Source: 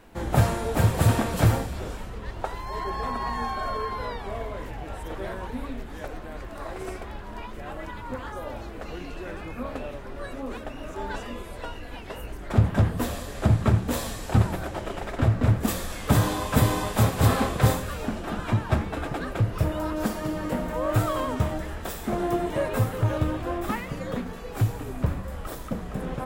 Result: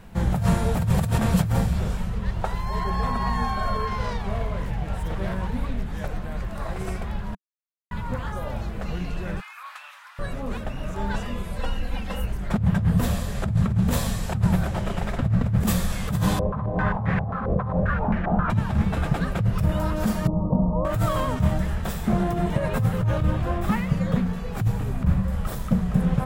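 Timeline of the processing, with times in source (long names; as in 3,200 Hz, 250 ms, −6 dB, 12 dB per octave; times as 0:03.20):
0:03.87–0:05.97: phase distortion by the signal itself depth 0.14 ms
0:07.35–0:07.91: silence
0:09.40–0:10.19: Butterworth high-pass 1,000 Hz
0:11.56–0:12.25: comb filter 3.8 ms, depth 86%
0:16.39–0:18.50: low-pass on a step sequencer 7.5 Hz 520–1,900 Hz
0:20.27–0:20.85: Butterworth low-pass 1,100 Hz 72 dB per octave
0:21.81–0:25.33: high-shelf EQ 5,600 Hz −4 dB
whole clip: compressor whose output falls as the input rises −26 dBFS, ratio −1; low shelf with overshoot 230 Hz +6.5 dB, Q 3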